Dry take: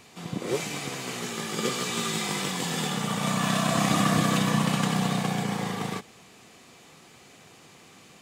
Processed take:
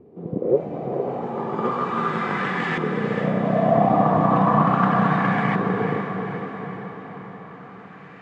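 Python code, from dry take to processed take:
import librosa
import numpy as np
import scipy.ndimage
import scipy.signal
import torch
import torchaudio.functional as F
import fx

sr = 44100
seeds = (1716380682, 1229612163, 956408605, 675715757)

y = fx.filter_lfo_lowpass(x, sr, shape='saw_up', hz=0.36, low_hz=390.0, high_hz=2000.0, q=3.3)
y = fx.echo_diffused(y, sr, ms=474, feedback_pct=58, wet_db=-6.5)
y = y * 10.0 ** (3.0 / 20.0)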